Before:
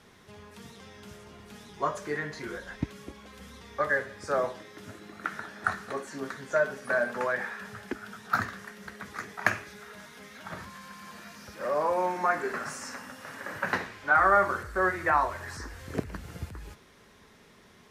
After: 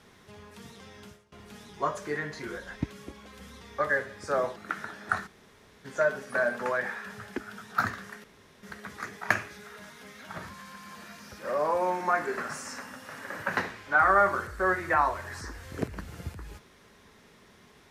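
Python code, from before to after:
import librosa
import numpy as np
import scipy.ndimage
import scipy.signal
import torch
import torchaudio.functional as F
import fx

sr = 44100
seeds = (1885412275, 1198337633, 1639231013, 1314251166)

y = fx.edit(x, sr, fx.fade_out_to(start_s=1.05, length_s=0.27, curve='qua', floor_db=-20.0),
    fx.cut(start_s=4.56, length_s=0.55),
    fx.room_tone_fill(start_s=5.82, length_s=0.58, crossfade_s=0.02),
    fx.insert_room_tone(at_s=8.79, length_s=0.39), tone=tone)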